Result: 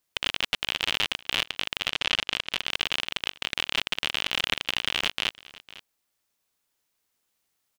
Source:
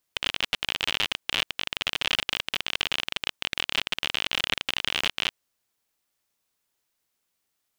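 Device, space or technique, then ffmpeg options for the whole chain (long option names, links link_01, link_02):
ducked delay: -filter_complex "[0:a]asettb=1/sr,asplit=3[link_01][link_02][link_03];[link_01]atrim=end=1.904[link_04];[link_02]atrim=start=1.9:end=2.51,asetpts=PTS-STARTPTS,afade=type=in:duration=0.004:curve=qsin,afade=type=out:start_time=0.606:duration=0.004:curve=qsin,lowpass=7800[link_05];[link_03]atrim=start=2.506[link_06];[link_04][link_05]acrossfade=duration=0.004:curve1=hsin:curve2=qsin[link_07];[link_07][link_06]acrossfade=duration=0.004:curve1=qsin:curve2=hsin,asplit=3[link_08][link_09][link_10];[link_09]adelay=504,volume=-3.5dB[link_11];[link_10]apad=whole_len=365475[link_12];[link_11][link_12]sidechaincompress=threshold=-39dB:ratio=4:attack=11:release=1270[link_13];[link_08][link_13]amix=inputs=2:normalize=0"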